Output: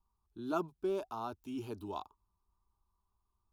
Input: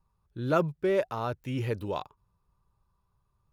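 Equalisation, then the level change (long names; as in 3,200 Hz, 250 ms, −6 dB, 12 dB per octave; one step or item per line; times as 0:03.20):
phaser with its sweep stopped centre 520 Hz, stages 6
−5.0 dB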